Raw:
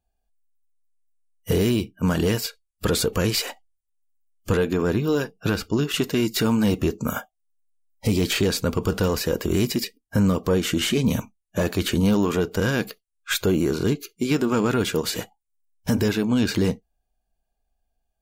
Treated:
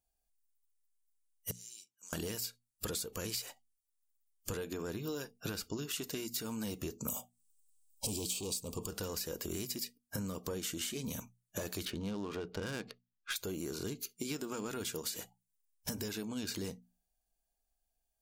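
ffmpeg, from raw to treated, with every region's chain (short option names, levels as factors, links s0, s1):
-filter_complex "[0:a]asettb=1/sr,asplit=3[s0][s1][s2];[s0]atrim=end=1.514[s3];[s1]atrim=start=1.51:end=2.13,asetpts=PTS-STARTPTS,afade=t=in:d=0.004:c=qsin,afade=t=out:st=0.616:d=0.004:c=qsin,bandpass=f=6800:t=q:w=3.8,acompressor=threshold=0.00447:ratio=4:attack=3.2:release=140:knee=1:detection=peak[s4];[s2]atrim=start=2.126[s5];[s3][s4]acrossfade=d=0.004:c1=hsin:c2=qsin[s6];[s6][s5]acrossfade=d=0.004:c1=qsin:c2=hsin,asettb=1/sr,asplit=3[s7][s8][s9];[s7]atrim=end=7.084[s10];[s8]atrim=start=7.08:end=8.87,asetpts=PTS-STARTPTS,afade=t=in:d=0.004:c=qsin,afade=t=out:st=1.786:d=0.004:c=qsin,equalizer=f=8200:w=4.2:g=9.5,aeval=exprs='0.335*sin(PI/2*1.78*val(0)/0.335)':c=same,asuperstop=centerf=1700:order=8:qfactor=1.3[s11];[s9]atrim=start=8.866[s12];[s10][s11]acrossfade=d=0.004:c1=hsin:c2=qsin[s13];[s13][s12]acrossfade=d=0.004:c1=qsin:c2=hsin,asettb=1/sr,asplit=3[s14][s15][s16];[s14]atrim=end=11.854[s17];[s15]atrim=start=11.85:end=13.36,asetpts=PTS-STARTPTS,afade=t=in:d=0.004:c=qsin,afade=t=out:st=1.506:d=0.004:c=qsin,lowpass=f=5800:w=0.5412,lowpass=f=5800:w=1.3066,adynamicsmooth=sensitivity=3.5:basefreq=2200[s18];[s16]atrim=start=13.356[s19];[s17][s18]acrossfade=d=0.004:c1=hsin:c2=qsin[s20];[s20][s19]acrossfade=d=0.004:c1=qsin:c2=hsin,bass=f=250:g=-2,treble=f=4000:g=12,acompressor=threshold=0.0447:ratio=12,bandreject=f=60:t=h:w=6,bandreject=f=120:t=h:w=6,bandreject=f=180:t=h:w=6,bandreject=f=240:t=h:w=6,volume=0.376"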